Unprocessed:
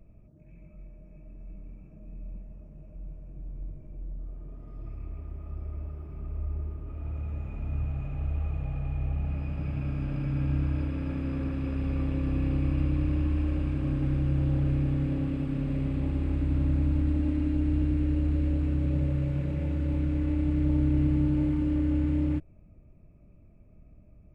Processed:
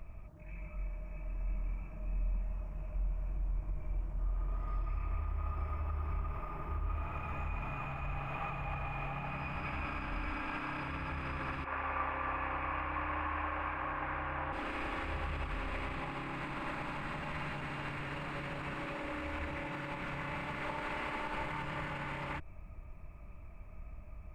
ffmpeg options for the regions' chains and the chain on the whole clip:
ffmpeg -i in.wav -filter_complex "[0:a]asettb=1/sr,asplit=3[link_01][link_02][link_03];[link_01]atrim=end=11.644[link_04];[link_02]atrim=start=11.64:end=14.53,asetpts=PTS-STARTPTS,afade=type=in:duration=0.004:curve=qsin,afade=type=out:start_time=2.886:duration=0.004:curve=qsin,acrossover=split=460 2200:gain=0.0794 1 0.0631[link_05][link_06][link_07];[link_05][link_06][link_07]amix=inputs=3:normalize=0,bandreject=frequency=1300:width=21[link_08];[link_03]atrim=start=14.526[link_09];[link_04][link_08]acrossfade=duration=0.004:curve1=hsin:curve2=qsin[link_10];[link_10][link_09]acrossfade=duration=0.004:curve1=qsin:curve2=hsin,afftfilt=real='re*lt(hypot(re,im),0.224)':imag='im*lt(hypot(re,im),0.224)':win_size=1024:overlap=0.75,alimiter=level_in=11dB:limit=-24dB:level=0:latency=1:release=85,volume=-11dB,equalizer=frequency=125:width_type=o:width=1:gain=-7,equalizer=frequency=250:width_type=o:width=1:gain=-10,equalizer=frequency=500:width_type=o:width=1:gain=-8,equalizer=frequency=1000:width_type=o:width=1:gain=11,equalizer=frequency=2000:width_type=o:width=1:gain=6,volume=8dB" out.wav

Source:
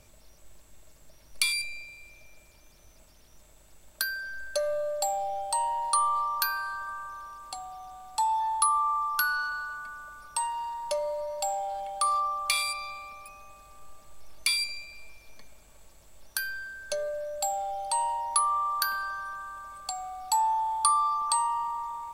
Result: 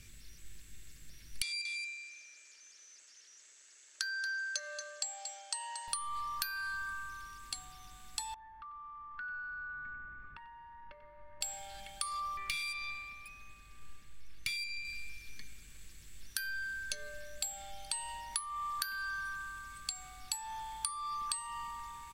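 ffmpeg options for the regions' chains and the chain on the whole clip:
ffmpeg -i in.wav -filter_complex "[0:a]asettb=1/sr,asplit=3[link_01][link_02][link_03];[link_01]atrim=end=1.424[link_04];[link_02]atrim=start=1.42:end=5.88,asetpts=PTS-STARTPTS,afade=type=in:duration=0.004:curve=qsin,afade=type=out:start_time=4.456:duration=0.004:curve=qsin,highpass=frequency=480:width=0.5412,highpass=frequency=480:width=1.3066,equalizer=frequency=2400:width_type=q:width=4:gain=-4,equalizer=frequency=3600:width_type=q:width=4:gain=-5,equalizer=frequency=6500:width_type=q:width=4:gain=8,lowpass=frequency=7800:width=0.5412,lowpass=frequency=7800:width=1.3066,aecho=1:1:230:0.224,atrim=end_sample=196686[link_05];[link_03]atrim=start=5.876[link_06];[link_04][link_05]acrossfade=duration=0.004:curve1=hsin:curve2=qsin[link_07];[link_07][link_06]acrossfade=duration=0.004:curve1=qsin:curve2=hsin,asettb=1/sr,asplit=3[link_08][link_09][link_10];[link_08]atrim=end=8.344[link_11];[link_09]atrim=start=8.34:end=11.41,asetpts=PTS-STARTPTS,afade=type=in:duration=0.004:curve=qsin,afade=type=out:start_time=3.066:duration=0.004:curve=qsin,lowpass=frequency=1800:width=0.5412,lowpass=frequency=1800:width=1.3066,aecho=1:1:92:0.299,atrim=end_sample=135387,acompressor=threshold=-38dB:ratio=8:attack=3.2:release=140:knee=1:detection=peak[link_12];[link_10]atrim=start=11.406[link_13];[link_11][link_12]acrossfade=duration=0.004:curve1=hsin:curve2=qsin[link_14];[link_14][link_13]acrossfade=duration=0.004:curve1=qsin:curve2=hsin,asettb=1/sr,asplit=3[link_15][link_16][link_17];[link_15]atrim=end=12.374[link_18];[link_16]atrim=start=12.37:end=14.85,asetpts=PTS-STARTPTS,afade=type=in:duration=0.004:curve=qsin,afade=type=out:start_time=2.476:duration=0.004:curve=qsin,bass=frequency=250:gain=-1,treble=frequency=4000:gain=-7,aeval=exprs='(tanh(20*val(0)+0.5)-tanh(0.5))/20':channel_layout=same[link_19];[link_17]atrim=start=14.846[link_20];[link_18][link_19]acrossfade=duration=0.004:curve1=hsin:curve2=qsin[link_21];[link_21][link_20]acrossfade=duration=0.004:curve1=qsin:curve2=hsin,firequalizer=gain_entry='entry(130,0);entry(410,-8);entry(640,-24);entry(1700,2);entry(14000,-3)':delay=0.05:min_phase=1,acompressor=threshold=-37dB:ratio=8,volume=3dB" out.wav

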